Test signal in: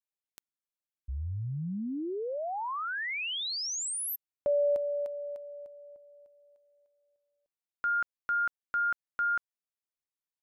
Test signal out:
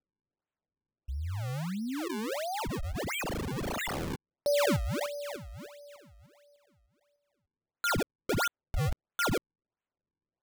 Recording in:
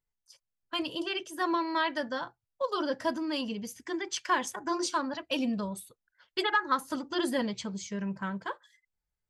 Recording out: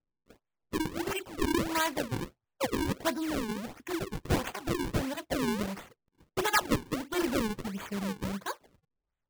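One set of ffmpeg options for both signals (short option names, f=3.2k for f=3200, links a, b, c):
-af "acrusher=samples=39:mix=1:aa=0.000001:lfo=1:lforange=62.4:lforate=1.5"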